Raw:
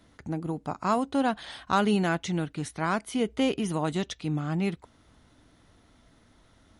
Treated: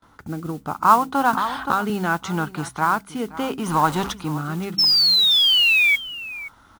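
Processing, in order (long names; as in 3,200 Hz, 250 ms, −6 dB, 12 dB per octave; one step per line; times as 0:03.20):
0:03.66–0:04.12: converter with a step at zero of −31.5 dBFS
noise gate with hold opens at −51 dBFS
flat-topped bell 1,100 Hz +13.5 dB 1.1 octaves
in parallel at −2.5 dB: downward compressor, threshold −30 dBFS, peak gain reduction 21 dB
on the sum: rotating-speaker cabinet horn 0.7 Hz
0:04.78–0:05.96: sound drawn into the spectrogram fall 2,200–5,400 Hz −17 dBFS
noise that follows the level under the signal 22 dB
hum removal 65.37 Hz, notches 4
on a send: single-tap delay 524 ms −16.5 dB
0:01.33–0:01.90: on the sum: multiband upward and downward compressor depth 100%
level +1 dB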